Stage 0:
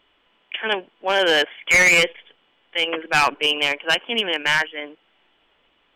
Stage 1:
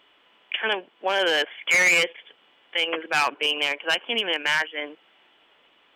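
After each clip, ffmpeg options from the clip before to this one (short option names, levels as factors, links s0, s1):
-af "highpass=f=290:p=1,alimiter=limit=0.133:level=0:latency=1:release=414,volume=1.58"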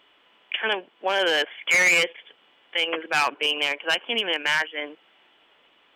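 -af anull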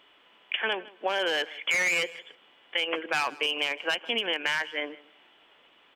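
-af "acompressor=threshold=0.0631:ratio=6,aecho=1:1:158|316:0.0944|0.017"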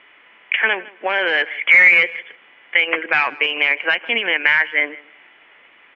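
-af "lowpass=f=2100:t=q:w=3.9,volume=1.88"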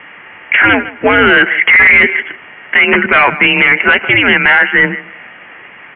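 -af "highpass=f=180:t=q:w=0.5412,highpass=f=180:t=q:w=1.307,lowpass=f=3000:t=q:w=0.5176,lowpass=f=3000:t=q:w=0.7071,lowpass=f=3000:t=q:w=1.932,afreqshift=-120,apsyclip=7.08,volume=0.794"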